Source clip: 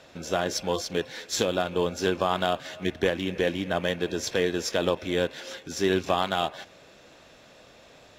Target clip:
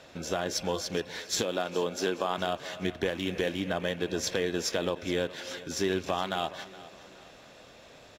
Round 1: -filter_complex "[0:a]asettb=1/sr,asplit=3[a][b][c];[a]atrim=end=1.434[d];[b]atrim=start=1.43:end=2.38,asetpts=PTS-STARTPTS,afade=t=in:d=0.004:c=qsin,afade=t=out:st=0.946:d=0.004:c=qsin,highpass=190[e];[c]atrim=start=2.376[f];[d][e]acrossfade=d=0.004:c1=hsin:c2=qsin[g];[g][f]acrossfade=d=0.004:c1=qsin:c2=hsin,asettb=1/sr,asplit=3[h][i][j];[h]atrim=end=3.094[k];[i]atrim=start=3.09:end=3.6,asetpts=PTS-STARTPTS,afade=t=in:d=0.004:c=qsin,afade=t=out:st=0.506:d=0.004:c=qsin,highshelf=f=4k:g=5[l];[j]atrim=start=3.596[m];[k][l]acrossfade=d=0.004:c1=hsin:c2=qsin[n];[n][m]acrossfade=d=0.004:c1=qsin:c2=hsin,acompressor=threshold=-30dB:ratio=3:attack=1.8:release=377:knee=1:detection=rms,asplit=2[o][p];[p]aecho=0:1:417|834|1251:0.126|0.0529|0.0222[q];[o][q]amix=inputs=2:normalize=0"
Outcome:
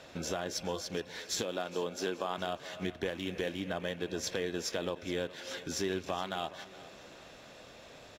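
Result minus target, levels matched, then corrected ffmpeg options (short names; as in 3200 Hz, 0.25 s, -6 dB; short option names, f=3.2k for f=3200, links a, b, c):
compressor: peak gain reduction +5.5 dB
-filter_complex "[0:a]asettb=1/sr,asplit=3[a][b][c];[a]atrim=end=1.434[d];[b]atrim=start=1.43:end=2.38,asetpts=PTS-STARTPTS,afade=t=in:d=0.004:c=qsin,afade=t=out:st=0.946:d=0.004:c=qsin,highpass=190[e];[c]atrim=start=2.376[f];[d][e]acrossfade=d=0.004:c1=hsin:c2=qsin[g];[g][f]acrossfade=d=0.004:c1=qsin:c2=hsin,asettb=1/sr,asplit=3[h][i][j];[h]atrim=end=3.094[k];[i]atrim=start=3.09:end=3.6,asetpts=PTS-STARTPTS,afade=t=in:d=0.004:c=qsin,afade=t=out:st=0.506:d=0.004:c=qsin,highshelf=f=4k:g=5[l];[j]atrim=start=3.596[m];[k][l]acrossfade=d=0.004:c1=hsin:c2=qsin[n];[n][m]acrossfade=d=0.004:c1=qsin:c2=hsin,acompressor=threshold=-22dB:ratio=3:attack=1.8:release=377:knee=1:detection=rms,asplit=2[o][p];[p]aecho=0:1:417|834|1251:0.126|0.0529|0.0222[q];[o][q]amix=inputs=2:normalize=0"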